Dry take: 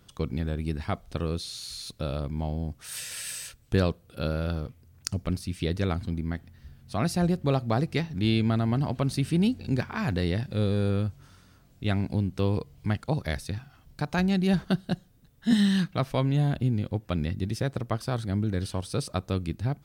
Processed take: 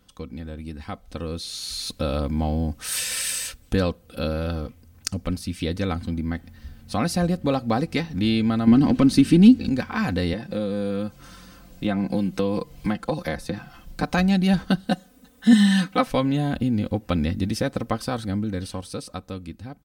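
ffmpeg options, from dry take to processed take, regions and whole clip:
-filter_complex "[0:a]asettb=1/sr,asplit=3[a][b][c];[a]atrim=end=8.674[d];[b]atrim=start=8.67:end=9.69,asetpts=PTS-STARTPTS,afade=t=in:d=0.004:c=qsin,afade=t=out:st=1.016:d=0.004:c=qsin,asplit=2[e][f];[f]highpass=f=720:p=1,volume=14dB,asoftclip=type=tanh:threshold=-13dB[g];[e][g]amix=inputs=2:normalize=0,lowpass=f=7k:p=1,volume=-6dB,lowshelf=f=450:t=q:w=1.5:g=10.5[h];[c]atrim=start=9.686[i];[d][h]acrossfade=d=0.004:c1=hsin:c2=qsin[j];[j][i]acrossfade=d=0.004:c1=qsin:c2=hsin,asettb=1/sr,asplit=3[k][l][m];[k]atrim=end=10.334[n];[l]atrim=start=10.33:end=14.03,asetpts=PTS-STARTPTS,afade=t=in:d=0.004:c=qsin,afade=t=out:st=3.696:d=0.004:c=qsin,aecho=1:1:5.8:0.53,atrim=end_sample=163170,acrossover=split=180|1600[o][p][q];[o]acompressor=threshold=-43dB:ratio=4[r];[p]acompressor=threshold=-33dB:ratio=4[s];[q]acompressor=threshold=-51dB:ratio=4[t];[r][s][t]amix=inputs=3:normalize=0[u];[m]atrim=start=14.026[v];[n][u]acrossfade=d=0.004:c1=hsin:c2=qsin[w];[w][v]acrossfade=d=0.004:c1=qsin:c2=hsin,asettb=1/sr,asplit=3[x][y][z];[x]atrim=end=14.874[aa];[y]atrim=start=14.87:end=16.07,asetpts=PTS-STARTPTS,afade=t=in:d=0.004:c=qsin,afade=t=out:st=1.196:d=0.004:c=qsin,highpass=f=210:p=1,aecho=1:1:4:0.98,atrim=end_sample=52920[ab];[z]atrim=start=16.066[ac];[aa][ab]acrossfade=d=0.004:c1=hsin:c2=qsin[ad];[ad][ac]acrossfade=d=0.004:c1=qsin:c2=hsin,acompressor=threshold=-34dB:ratio=1.5,aecho=1:1:3.9:0.57,dynaudnorm=f=170:g=21:m=14dB,volume=-2.5dB"

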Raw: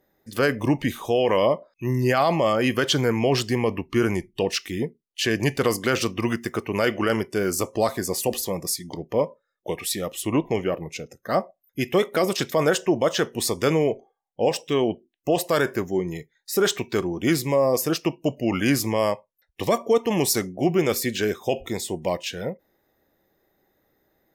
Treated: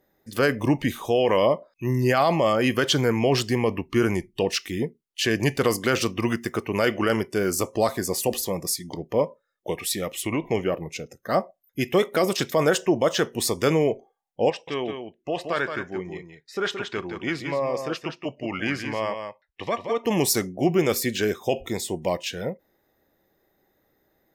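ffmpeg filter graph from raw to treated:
-filter_complex "[0:a]asettb=1/sr,asplit=3[a][b][c];[a]atrim=end=10.024[d];[b]atrim=start=10.02:end=10.52,asetpts=PTS-STARTPTS,afade=t=in:d=0.004:c=qsin,afade=t=out:st=0.496:d=0.004:c=qsin,equalizer=f=2.2k:w=4:g=11,acompressor=threshold=-22dB:ratio=3:attack=3.2:release=140:knee=1:detection=peak[e];[c]atrim=start=10.516[f];[d][e]acrossfade=d=0.004:c1=hsin:c2=qsin[g];[g][f]acrossfade=d=0.004:c1=qsin:c2=hsin,asettb=1/sr,asplit=3[h][i][j];[h]atrim=end=14.504[k];[i]atrim=start=14.5:end=20.05,asetpts=PTS-STARTPTS,afade=t=in:d=0.004:c=qsin,afade=t=out:st=5.546:d=0.004:c=qsin,lowpass=1.9k,tiltshelf=f=1.4k:g=-9,aecho=1:1:173:0.447,atrim=end_sample=244755[l];[j]atrim=start=20.046[m];[k][l]acrossfade=d=0.004:c1=hsin:c2=qsin[n];[n][m]acrossfade=d=0.004:c1=qsin:c2=hsin"

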